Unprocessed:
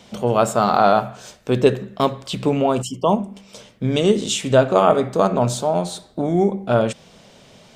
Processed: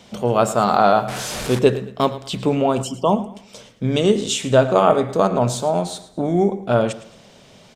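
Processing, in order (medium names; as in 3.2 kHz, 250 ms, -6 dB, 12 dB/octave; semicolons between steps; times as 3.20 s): 1.08–1.59 s: one-bit delta coder 64 kbps, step -21.5 dBFS; feedback delay 110 ms, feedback 33%, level -16.5 dB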